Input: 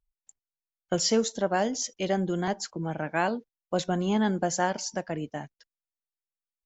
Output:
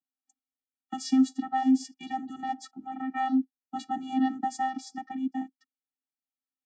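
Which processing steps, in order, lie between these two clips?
channel vocoder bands 16, square 262 Hz

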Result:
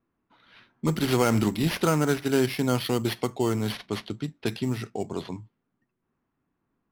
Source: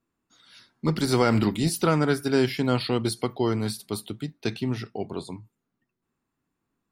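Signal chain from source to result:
in parallel at −2 dB: downward compressor, threshold −32 dBFS, peak gain reduction 15.5 dB
on the sum: sample-rate reduction 7,600 Hz, jitter 0%
low-pass that shuts in the quiet parts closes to 2,100 Hz, open at −20.5 dBFS
level −2.5 dB

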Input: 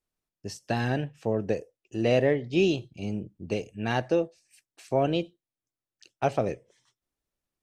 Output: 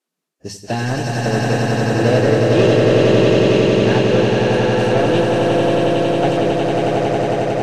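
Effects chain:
high-shelf EQ 7,200 Hz −3 dB
mains-hum notches 50/100/150/200 Hz
soft clipping −21 dBFS, distortion −12 dB
on a send: echo that builds up and dies away 91 ms, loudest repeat 8, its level −3 dB
on the sum: level +8.5 dB
Ogg Vorbis 32 kbit/s 44,100 Hz

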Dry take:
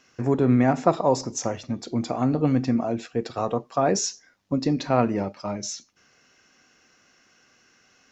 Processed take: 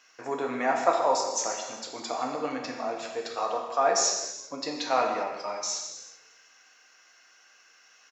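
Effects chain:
high-pass filter 760 Hz 12 dB per octave
on a send: echo with shifted repeats 154 ms, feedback 64%, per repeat −35 Hz, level −23.5 dB
on the sum: reverb whose tail is shaped and stops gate 430 ms falling, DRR 1 dB

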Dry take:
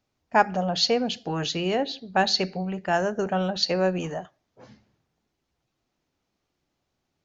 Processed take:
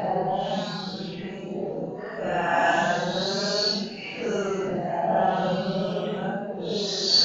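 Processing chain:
delay that swaps between a low-pass and a high-pass 374 ms, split 820 Hz, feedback 70%, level −3 dB
harmonic and percussive parts rebalanced percussive +6 dB
extreme stretch with random phases 6.5×, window 0.05 s, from 0:02.53
level −5 dB

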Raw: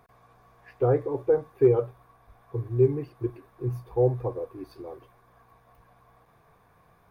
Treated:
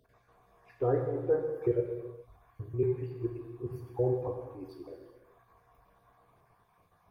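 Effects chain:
time-frequency cells dropped at random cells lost 39%
reverb whose tail is shaped and stops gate 460 ms falling, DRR 2 dB
level −6 dB

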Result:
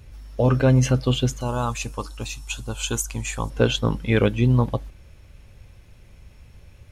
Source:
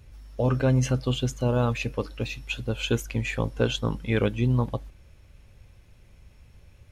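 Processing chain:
0:01.41–0:03.50: octave-band graphic EQ 125/250/500/1,000/2,000/4,000/8,000 Hz −7/−5/−10/+6/−10/−3/+12 dB
level +5 dB

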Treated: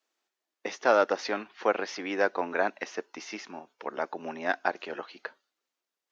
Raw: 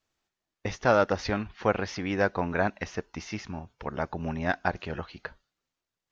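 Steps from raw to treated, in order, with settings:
high-pass filter 290 Hz 24 dB per octave

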